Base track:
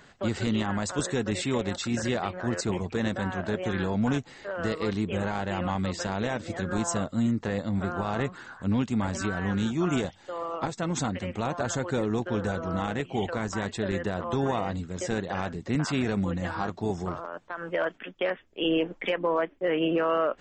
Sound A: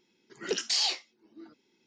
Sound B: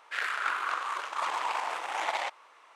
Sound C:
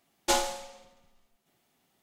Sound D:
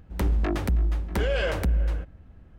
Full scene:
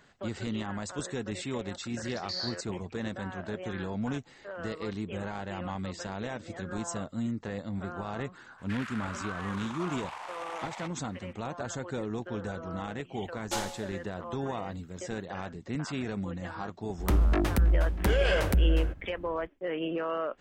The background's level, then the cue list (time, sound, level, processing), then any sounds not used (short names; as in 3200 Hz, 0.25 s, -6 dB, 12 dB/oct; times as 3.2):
base track -7 dB
1.59 add A -4.5 dB + double band-pass 2800 Hz, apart 1.3 oct
8.58 add B -3 dB + compressor, threshold -34 dBFS
13.23 add C -7.5 dB
16.89 add D + high shelf 7400 Hz +5.5 dB